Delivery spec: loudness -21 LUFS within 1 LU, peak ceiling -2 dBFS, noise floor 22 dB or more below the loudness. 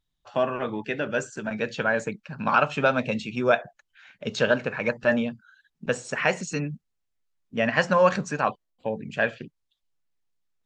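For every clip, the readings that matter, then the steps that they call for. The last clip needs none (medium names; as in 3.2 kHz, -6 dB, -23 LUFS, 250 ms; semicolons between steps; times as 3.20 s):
loudness -26.0 LUFS; peak level -6.0 dBFS; loudness target -21.0 LUFS
-> trim +5 dB; peak limiter -2 dBFS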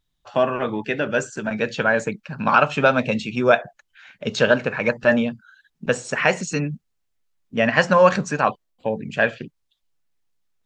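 loudness -21.0 LUFS; peak level -2.0 dBFS; noise floor -73 dBFS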